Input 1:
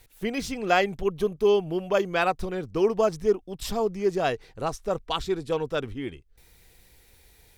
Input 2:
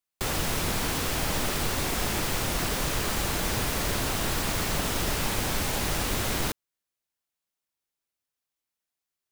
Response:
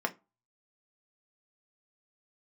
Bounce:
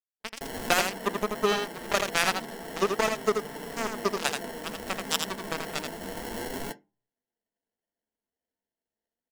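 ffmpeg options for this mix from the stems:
-filter_complex "[0:a]acrusher=bits=2:mix=0:aa=0.5,acompressor=threshold=0.0891:ratio=6,volume=0.944,asplit=4[s0][s1][s2][s3];[s1]volume=0.0794[s4];[s2]volume=0.596[s5];[1:a]acrusher=samples=36:mix=1:aa=0.000001,flanger=delay=6.8:depth=8.6:regen=54:speed=0.3:shape=sinusoidal,adelay=200,volume=0.422,asplit=2[s6][s7];[s7]volume=0.531[s8];[s3]apad=whole_len=419497[s9];[s6][s9]sidechaincompress=threshold=0.02:ratio=8:attack=16:release=989[s10];[2:a]atrim=start_sample=2205[s11];[s4][s8]amix=inputs=2:normalize=0[s12];[s12][s11]afir=irnorm=-1:irlink=0[s13];[s5]aecho=0:1:82:1[s14];[s0][s10][s13][s14]amix=inputs=4:normalize=0,highshelf=f=4000:g=11"

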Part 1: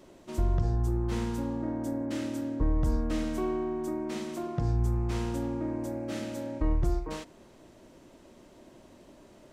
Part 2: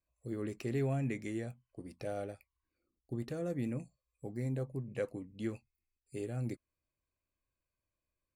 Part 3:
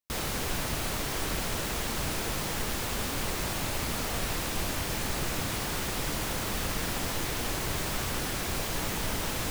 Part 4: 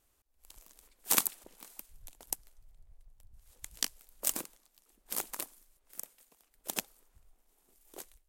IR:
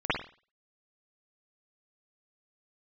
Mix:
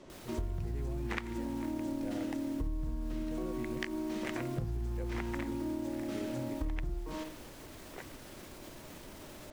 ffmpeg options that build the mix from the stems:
-filter_complex "[0:a]lowpass=7300,acrossover=split=250[s0][s1];[s1]acompressor=threshold=0.0112:ratio=6[s2];[s0][s2]amix=inputs=2:normalize=0,volume=0.944,asplit=2[s3][s4];[s4]volume=0.15[s5];[1:a]volume=0.596[s6];[2:a]alimiter=level_in=1.78:limit=0.0631:level=0:latency=1,volume=0.562,volume=0.211[s7];[3:a]lowpass=f=2000:t=q:w=3.7,volume=1.12[s8];[4:a]atrim=start_sample=2205[s9];[s5][s9]afir=irnorm=-1:irlink=0[s10];[s3][s6][s7][s8][s10]amix=inputs=5:normalize=0,acompressor=threshold=0.0251:ratio=10"

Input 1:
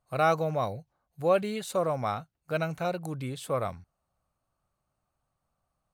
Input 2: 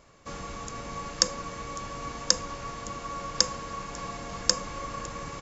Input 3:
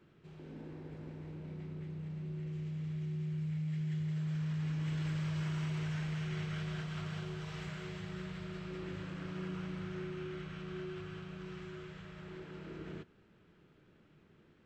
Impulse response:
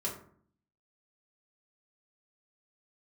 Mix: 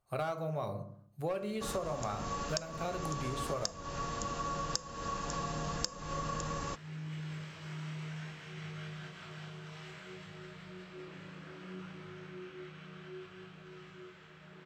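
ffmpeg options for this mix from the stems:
-filter_complex "[0:a]volume=7.5,asoftclip=hard,volume=0.133,volume=0.562,asplit=2[s0][s1];[s1]volume=0.631[s2];[1:a]bandreject=f=2200:w=6.4,adelay=1350,volume=1.12[s3];[2:a]highpass=f=280:p=1,flanger=delay=19.5:depth=6.6:speed=0.61,adelay=2250,volume=1.12[s4];[3:a]atrim=start_sample=2205[s5];[s2][s5]afir=irnorm=-1:irlink=0[s6];[s0][s3][s4][s6]amix=inputs=4:normalize=0,acompressor=threshold=0.0251:ratio=16"

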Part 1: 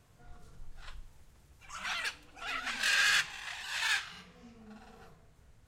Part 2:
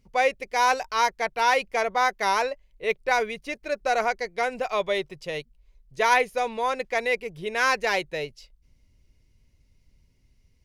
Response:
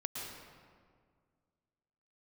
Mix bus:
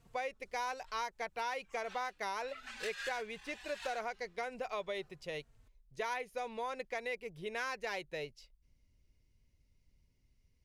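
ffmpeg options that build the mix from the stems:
-filter_complex "[0:a]asplit=2[s0][s1];[s1]adelay=3.8,afreqshift=-1.3[s2];[s0][s2]amix=inputs=2:normalize=1,volume=0.794[s3];[1:a]volume=0.335,asplit=2[s4][s5];[s5]apad=whole_len=250479[s6];[s3][s6]sidechaincompress=threshold=0.00794:ratio=3:attack=11:release=641[s7];[s7][s4]amix=inputs=2:normalize=0,acompressor=threshold=0.0178:ratio=6"

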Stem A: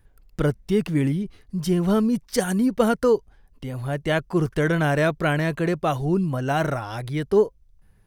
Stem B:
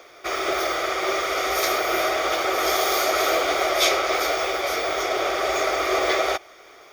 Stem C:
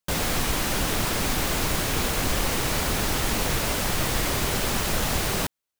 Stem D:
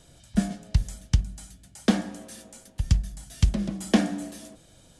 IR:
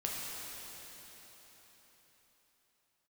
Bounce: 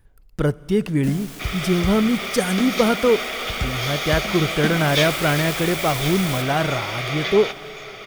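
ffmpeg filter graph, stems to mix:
-filter_complex "[0:a]volume=1.12,asplit=3[s0][s1][s2];[s1]volume=0.0944[s3];[s2]volume=0.0668[s4];[1:a]equalizer=f=2900:t=o:w=1.4:g=14,adelay=1150,volume=0.282,asplit=2[s5][s6];[s6]volume=0.335[s7];[2:a]aeval=exprs='(mod(11.2*val(0)+1,2)-1)/11.2':c=same,adelay=950,volume=0.376,afade=t=in:st=4.55:d=0.57:silence=0.334965,asplit=2[s8][s9];[s9]volume=0.447[s10];[3:a]adelay=700,volume=0.501[s11];[4:a]atrim=start_sample=2205[s12];[s3][s10]amix=inputs=2:normalize=0[s13];[s13][s12]afir=irnorm=-1:irlink=0[s14];[s4][s7]amix=inputs=2:normalize=0,aecho=0:1:1059:1[s15];[s0][s5][s8][s11][s14][s15]amix=inputs=6:normalize=0"

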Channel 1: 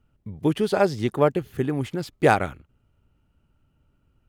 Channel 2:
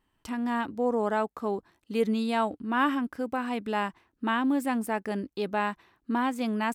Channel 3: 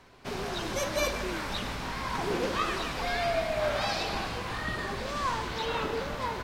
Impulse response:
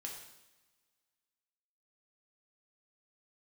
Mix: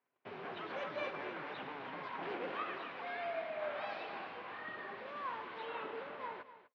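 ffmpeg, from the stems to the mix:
-filter_complex "[0:a]aecho=1:1:7:0.65,acompressor=threshold=0.0251:ratio=2.5,aeval=exprs='0.0266*(abs(mod(val(0)/0.0266+3,4)-2)-1)':c=same,volume=0.631,asplit=2[s0][s1];[s1]volume=0.473[s2];[2:a]volume=0.299,asplit=2[s3][s4];[s4]volume=0.2[s5];[s0]acompressor=threshold=0.00708:ratio=6,volume=1[s6];[s2][s5]amix=inputs=2:normalize=0,aecho=0:1:249|498|747|996:1|0.3|0.09|0.027[s7];[s3][s6][s7]amix=inputs=3:normalize=0,lowpass=f=2900:w=0.5412,lowpass=f=2900:w=1.3066,agate=range=0.112:threshold=0.00112:ratio=16:detection=peak,highpass=330"

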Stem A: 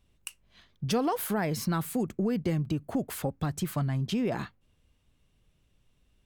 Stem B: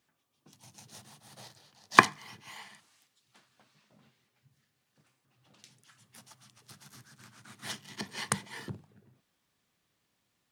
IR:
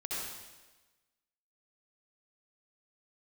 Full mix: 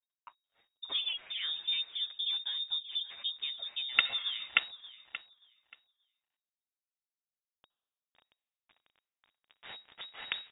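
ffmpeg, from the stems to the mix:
-filter_complex "[0:a]aeval=exprs='sgn(val(0))*max(abs(val(0))-0.001,0)':c=same,equalizer=f=71:w=0.92:g=7,asplit=2[s0][s1];[s1]adelay=8.2,afreqshift=-2.3[s2];[s0][s2]amix=inputs=2:normalize=1,volume=0.596,asplit=3[s3][s4][s5];[s4]volume=0.178[s6];[1:a]acrusher=bits=4:dc=4:mix=0:aa=0.000001,adelay=2000,volume=0.75,asplit=3[s7][s8][s9];[s8]volume=0.0668[s10];[s9]volume=0.447[s11];[s5]apad=whole_len=552000[s12];[s7][s12]sidechaincompress=threshold=0.01:ratio=8:attack=6.1:release=110[s13];[2:a]atrim=start_sample=2205[s14];[s10][s14]afir=irnorm=-1:irlink=0[s15];[s6][s11]amix=inputs=2:normalize=0,aecho=0:1:580|1160|1740:1|0.19|0.0361[s16];[s3][s13][s15][s16]amix=inputs=4:normalize=0,lowpass=f=3200:t=q:w=0.5098,lowpass=f=3200:t=q:w=0.6013,lowpass=f=3200:t=q:w=0.9,lowpass=f=3200:t=q:w=2.563,afreqshift=-3800"

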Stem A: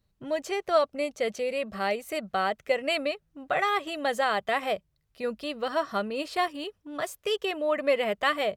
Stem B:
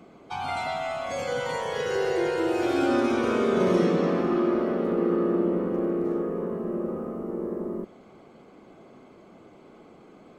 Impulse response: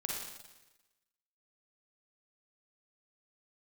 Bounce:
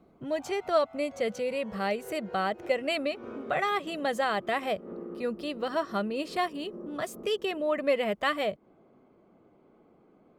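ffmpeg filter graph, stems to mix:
-filter_complex "[0:a]equalizer=f=140:t=o:w=2.4:g=7,volume=0.708,asplit=2[s0][s1];[1:a]lowpass=f=1200:p=1,acompressor=threshold=0.0447:ratio=6,volume=0.335[s2];[s1]apad=whole_len=457761[s3];[s2][s3]sidechaincompress=threshold=0.01:ratio=8:attack=26:release=159[s4];[s0][s4]amix=inputs=2:normalize=0"

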